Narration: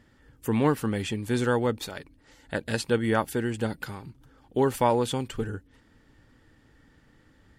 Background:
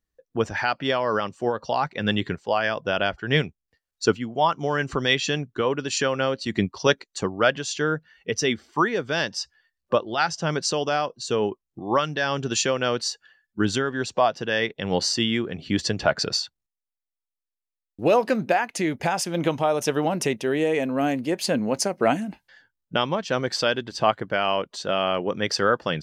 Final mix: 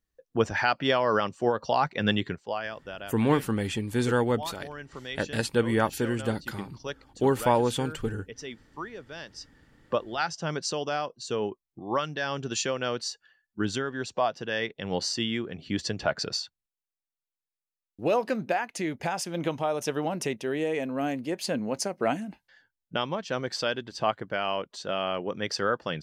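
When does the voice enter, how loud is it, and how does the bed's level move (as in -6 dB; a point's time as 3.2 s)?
2.65 s, 0.0 dB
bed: 2.04 s -0.5 dB
3.01 s -16.5 dB
9.25 s -16.5 dB
9.68 s -6 dB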